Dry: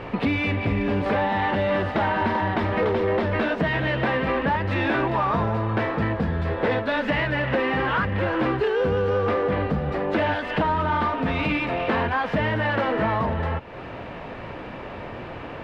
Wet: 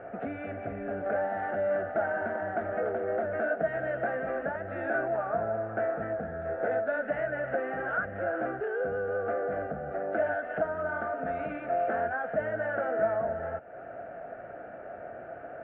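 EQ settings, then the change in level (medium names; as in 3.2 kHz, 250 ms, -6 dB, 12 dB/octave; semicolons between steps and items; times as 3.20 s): two resonant band-passes 1 kHz, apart 1.1 oct; distance through air 400 m; tilt EQ -3 dB/octave; +2.5 dB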